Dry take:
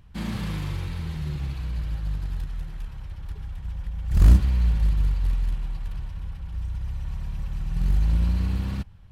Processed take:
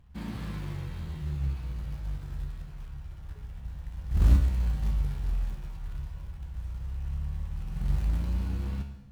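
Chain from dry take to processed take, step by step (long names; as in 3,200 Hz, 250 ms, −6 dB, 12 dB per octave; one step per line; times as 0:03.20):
high-shelf EQ 2,200 Hz −7.5 dB
in parallel at −5 dB: floating-point word with a short mantissa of 2 bits
on the sum: tuned comb filter 70 Hz, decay 0.61 s, harmonics all, mix 80%
dense smooth reverb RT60 0.96 s, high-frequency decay 0.85×, pre-delay 90 ms, DRR 13.5 dB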